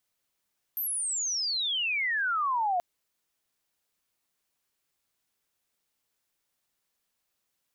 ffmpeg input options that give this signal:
ffmpeg -f lavfi -i "aevalsrc='pow(10,(-28.5+4.5*t/2.03)/20)*sin(2*PI*13000*2.03/log(690/13000)*(exp(log(690/13000)*t/2.03)-1))':duration=2.03:sample_rate=44100" out.wav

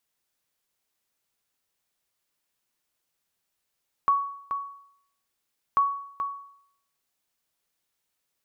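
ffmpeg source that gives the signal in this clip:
ffmpeg -f lavfi -i "aevalsrc='0.178*(sin(2*PI*1120*mod(t,1.69))*exp(-6.91*mod(t,1.69)/0.68)+0.398*sin(2*PI*1120*max(mod(t,1.69)-0.43,0))*exp(-6.91*max(mod(t,1.69)-0.43,0)/0.68))':duration=3.38:sample_rate=44100" out.wav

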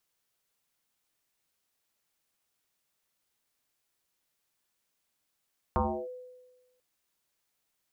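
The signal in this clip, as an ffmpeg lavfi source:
ffmpeg -f lavfi -i "aevalsrc='0.0794*pow(10,-3*t/1.23)*sin(2*PI*502*t+4.7*clip(1-t/0.32,0,1)*sin(2*PI*0.28*502*t))':duration=1.04:sample_rate=44100" out.wav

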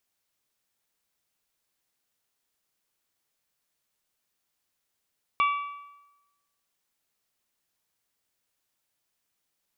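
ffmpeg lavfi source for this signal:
ffmpeg -f lavfi -i "aevalsrc='0.112*pow(10,-3*t/1.02)*sin(2*PI*1150*t)+0.0531*pow(10,-3*t/0.828)*sin(2*PI*2300*t)+0.0251*pow(10,-3*t/0.784)*sin(2*PI*2760*t)+0.0119*pow(10,-3*t/0.734)*sin(2*PI*3450*t)':duration=1.55:sample_rate=44100" out.wav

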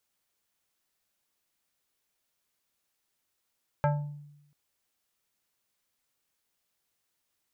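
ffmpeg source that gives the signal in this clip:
ffmpeg -f lavfi -i "aevalsrc='0.1*pow(10,-3*t/0.91)*sin(2*PI*146*t+1.4*pow(10,-3*t/0.57)*sin(2*PI*5.02*146*t))':duration=0.69:sample_rate=44100" out.wav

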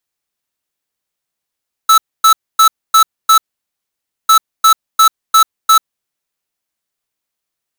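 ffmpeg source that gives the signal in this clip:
ffmpeg -f lavfi -i "aevalsrc='0.473*(2*lt(mod(1310*t,1),0.5)-1)*clip(min(mod(mod(t,2.4),0.35),0.09-mod(mod(t,2.4),0.35))/0.005,0,1)*lt(mod(t,2.4),1.75)':duration=4.8:sample_rate=44100" out.wav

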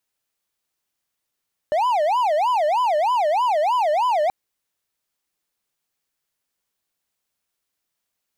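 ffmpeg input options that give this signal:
ffmpeg -f lavfi -i "aevalsrc='0.188*(1-4*abs(mod((801.5*t-208.5/(2*PI*3.2)*sin(2*PI*3.2*t))+0.25,1)-0.5))':duration=2.58:sample_rate=44100" out.wav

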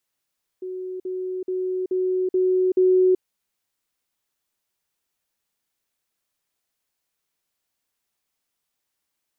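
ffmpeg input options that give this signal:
ffmpeg -f lavfi -i "aevalsrc='pow(10,(-28.5+3*floor(t/0.43))/20)*sin(2*PI*370*t)*clip(min(mod(t,0.43),0.38-mod(t,0.43))/0.005,0,1)':duration=2.58:sample_rate=44100" out.wav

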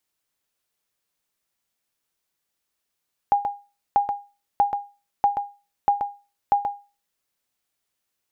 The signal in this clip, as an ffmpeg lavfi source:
ffmpeg -f lavfi -i "aevalsrc='0.299*(sin(2*PI*812*mod(t,0.64))*exp(-6.91*mod(t,0.64)/0.31)+0.473*sin(2*PI*812*max(mod(t,0.64)-0.13,0))*exp(-6.91*max(mod(t,0.64)-0.13,0)/0.31))':duration=3.84:sample_rate=44100" out.wav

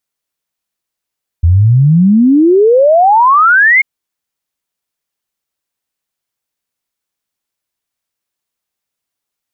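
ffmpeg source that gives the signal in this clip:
ffmpeg -f lavfi -i "aevalsrc='0.631*clip(min(t,2.39-t)/0.01,0,1)*sin(2*PI*80*2.39/log(2200/80)*(exp(log(2200/80)*t/2.39)-1))':duration=2.39:sample_rate=44100" out.wav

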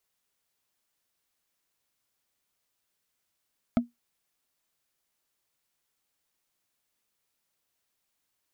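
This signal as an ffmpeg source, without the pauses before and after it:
ffmpeg -f lavfi -i "aevalsrc='0.168*pow(10,-3*t/0.16)*sin(2*PI*239*t)+0.0841*pow(10,-3*t/0.047)*sin(2*PI*658.9*t)+0.0422*pow(10,-3*t/0.021)*sin(2*PI*1291.6*t)+0.0211*pow(10,-3*t/0.012)*sin(2*PI*2135*t)+0.0106*pow(10,-3*t/0.007)*sin(2*PI*3188.3*t)':duration=0.45:sample_rate=44100" out.wav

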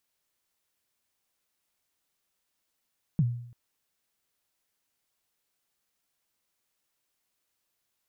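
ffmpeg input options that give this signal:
ffmpeg -f lavfi -i "aevalsrc='0.126*pow(10,-3*t/0.66)*sin(2*PI*(180*0.045/log(120/180)*(exp(log(120/180)*min(t,0.045)/0.045)-1)+120*max(t-0.045,0)))':duration=0.34:sample_rate=44100" out.wav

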